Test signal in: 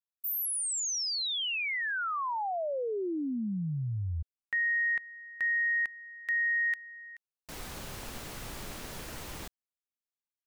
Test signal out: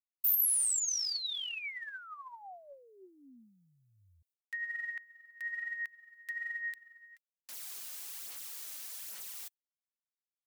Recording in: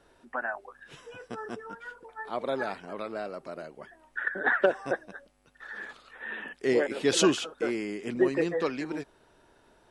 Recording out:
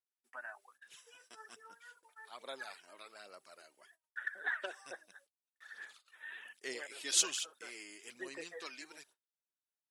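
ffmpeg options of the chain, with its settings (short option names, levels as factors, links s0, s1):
-af "agate=range=0.0224:threshold=0.00316:ratio=3:release=100:detection=rms,aderivative,aphaser=in_gain=1:out_gain=1:delay=3.3:decay=0.46:speed=1.2:type=sinusoidal"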